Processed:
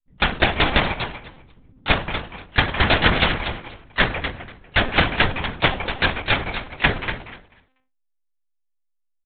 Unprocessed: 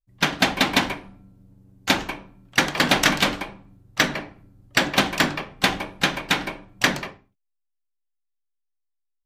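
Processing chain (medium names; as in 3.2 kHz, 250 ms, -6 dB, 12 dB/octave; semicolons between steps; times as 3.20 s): feedback delay 245 ms, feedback 17%, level -9 dB; monotone LPC vocoder at 8 kHz 260 Hz; trim +2.5 dB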